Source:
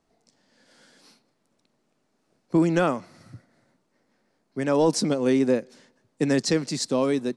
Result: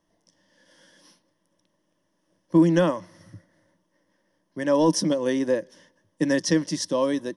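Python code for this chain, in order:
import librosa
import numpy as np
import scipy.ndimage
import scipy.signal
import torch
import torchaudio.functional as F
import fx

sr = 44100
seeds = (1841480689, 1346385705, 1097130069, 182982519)

y = fx.ripple_eq(x, sr, per_octave=1.2, db=12)
y = y * librosa.db_to_amplitude(-2.0)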